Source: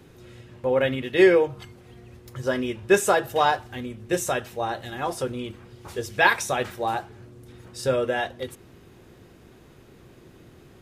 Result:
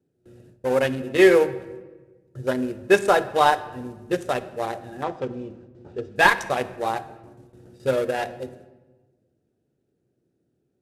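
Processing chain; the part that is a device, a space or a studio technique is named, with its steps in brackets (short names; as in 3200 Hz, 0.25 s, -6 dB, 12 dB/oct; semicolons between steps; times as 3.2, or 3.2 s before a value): Wiener smoothing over 41 samples; early wireless headset (HPF 220 Hz 6 dB/oct; CVSD 64 kbps); gate with hold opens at -42 dBFS; 5.03–6.16 air absorption 120 m; shoebox room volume 900 m³, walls mixed, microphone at 0.38 m; gain +3.5 dB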